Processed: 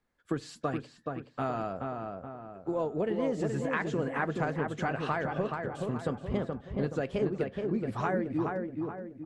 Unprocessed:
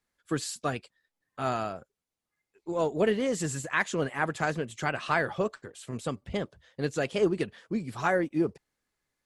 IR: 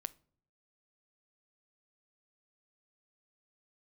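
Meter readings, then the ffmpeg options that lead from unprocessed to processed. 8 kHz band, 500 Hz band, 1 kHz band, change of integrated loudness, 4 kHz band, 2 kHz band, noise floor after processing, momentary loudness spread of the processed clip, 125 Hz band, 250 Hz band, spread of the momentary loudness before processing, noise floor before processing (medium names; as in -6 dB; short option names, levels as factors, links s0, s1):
-14.5 dB, -2.0 dB, -2.0 dB, -2.5 dB, -8.5 dB, -5.5 dB, -60 dBFS, 7 LU, +1.0 dB, -0.5 dB, 10 LU, under -85 dBFS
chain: -filter_complex "[0:a]highshelf=f=2200:g=-11.5,acrossover=split=6700[s0][s1];[s1]acompressor=threshold=0.00112:ratio=4:attack=1:release=60[s2];[s0][s2]amix=inputs=2:normalize=0,highshelf=f=7000:g=-5,acompressor=threshold=0.02:ratio=6,asplit=2[s3][s4];[s4]adelay=425,lowpass=f=2000:p=1,volume=0.668,asplit=2[s5][s6];[s6]adelay=425,lowpass=f=2000:p=1,volume=0.47,asplit=2[s7][s8];[s8]adelay=425,lowpass=f=2000:p=1,volume=0.47,asplit=2[s9][s10];[s10]adelay=425,lowpass=f=2000:p=1,volume=0.47,asplit=2[s11][s12];[s12]adelay=425,lowpass=f=2000:p=1,volume=0.47,asplit=2[s13][s14];[s14]adelay=425,lowpass=f=2000:p=1,volume=0.47[s15];[s3][s5][s7][s9][s11][s13][s15]amix=inputs=7:normalize=0,asplit=2[s16][s17];[1:a]atrim=start_sample=2205,asetrate=74970,aresample=44100[s18];[s17][s18]afir=irnorm=-1:irlink=0,volume=4.73[s19];[s16][s19]amix=inputs=2:normalize=0,volume=0.631"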